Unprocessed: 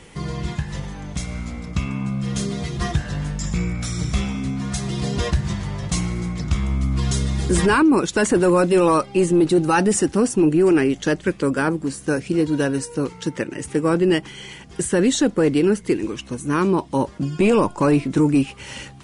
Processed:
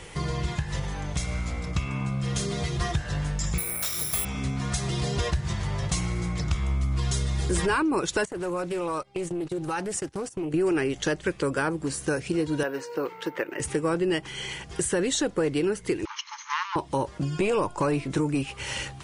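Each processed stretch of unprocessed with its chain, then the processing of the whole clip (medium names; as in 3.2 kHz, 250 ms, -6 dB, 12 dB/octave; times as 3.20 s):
3.58–4.25 s: tone controls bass -10 dB, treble -2 dB + hum notches 60/120/180/240/300/360/420/480 Hz + careless resampling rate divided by 4×, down none, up zero stuff
8.25–10.54 s: gate -23 dBFS, range -21 dB + compression 5:1, threshold -28 dBFS + loudspeaker Doppler distortion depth 0.18 ms
12.63–13.60 s: careless resampling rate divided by 3×, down none, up zero stuff + band-pass 350–2500 Hz
16.05–16.76 s: comb filter that takes the minimum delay 0.95 ms + brick-wall FIR band-pass 840–6800 Hz
whole clip: peaking EQ 230 Hz -11 dB 0.67 oct; compression 2.5:1, threshold -29 dBFS; trim +3 dB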